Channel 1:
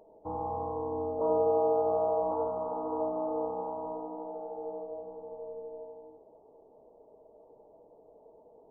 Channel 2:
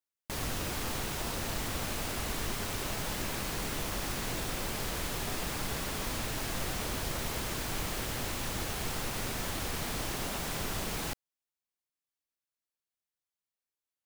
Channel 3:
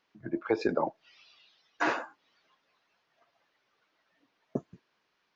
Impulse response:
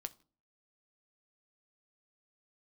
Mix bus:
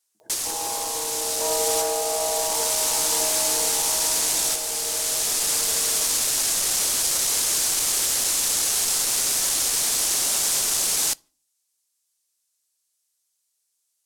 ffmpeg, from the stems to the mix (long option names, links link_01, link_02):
-filter_complex "[0:a]equalizer=frequency=2700:width_type=o:width=2.7:gain=11,adelay=200,volume=-1.5dB[link_01];[1:a]aeval=exprs='0.0891*(cos(1*acos(clip(val(0)/0.0891,-1,1)))-cos(1*PI/2))+0.0251*(cos(3*acos(clip(val(0)/0.0891,-1,1)))-cos(3*PI/2))+0.0141*(cos(5*acos(clip(val(0)/0.0891,-1,1)))-cos(5*PI/2))':channel_layout=same,lowpass=8900,highshelf=frequency=5500:gain=9.5,volume=2dB,asplit=2[link_02][link_03];[link_03]volume=-3dB[link_04];[2:a]volume=-16dB,asplit=2[link_05][link_06];[link_06]apad=whole_len=619630[link_07];[link_02][link_07]sidechaincompress=threshold=-50dB:ratio=8:attack=16:release=1140[link_08];[3:a]atrim=start_sample=2205[link_09];[link_04][link_09]afir=irnorm=-1:irlink=0[link_10];[link_01][link_08][link_05][link_10]amix=inputs=4:normalize=0,bass=frequency=250:gain=-13,treble=frequency=4000:gain=15"